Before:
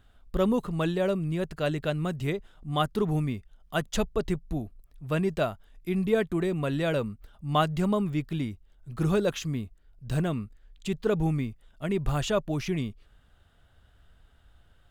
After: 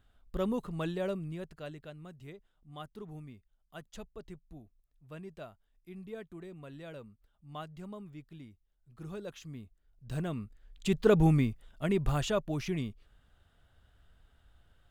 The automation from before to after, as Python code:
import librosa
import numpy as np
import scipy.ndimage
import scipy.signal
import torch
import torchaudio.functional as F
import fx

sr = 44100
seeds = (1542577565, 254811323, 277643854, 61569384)

y = fx.gain(x, sr, db=fx.line((1.11, -7.5), (1.92, -19.0), (8.97, -19.0), (10.35, -6.5), (10.99, 2.5), (11.49, 2.5), (12.38, -4.5)))